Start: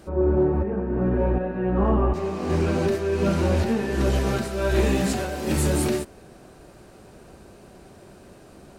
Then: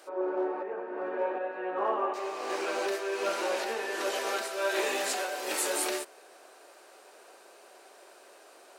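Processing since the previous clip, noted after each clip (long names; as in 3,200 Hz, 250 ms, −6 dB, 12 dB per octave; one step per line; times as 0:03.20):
Bessel high-pass filter 650 Hz, order 6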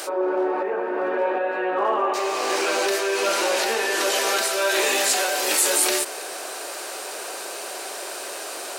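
high-shelf EQ 2,800 Hz +8.5 dB
envelope flattener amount 50%
level +3.5 dB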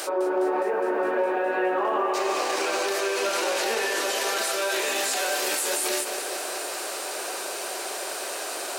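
brickwall limiter −17.5 dBFS, peak gain reduction 10 dB
feedback echo at a low word length 206 ms, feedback 80%, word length 9 bits, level −12 dB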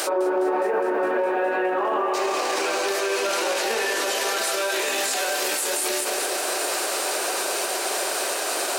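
brickwall limiter −22.5 dBFS, peak gain reduction 8.5 dB
level +7 dB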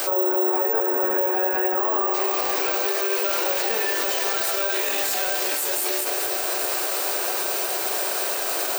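bad sample-rate conversion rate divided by 2×, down filtered, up zero stuff
level −2 dB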